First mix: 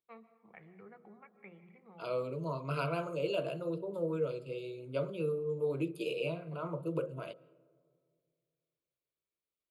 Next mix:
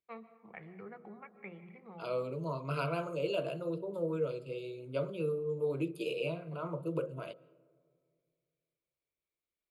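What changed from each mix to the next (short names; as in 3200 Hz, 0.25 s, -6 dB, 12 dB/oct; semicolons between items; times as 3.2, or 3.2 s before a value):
first voice +6.0 dB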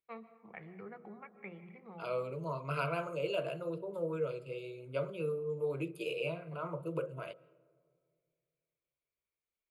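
second voice: add graphic EQ 250/2000/4000 Hz -7/+5/-5 dB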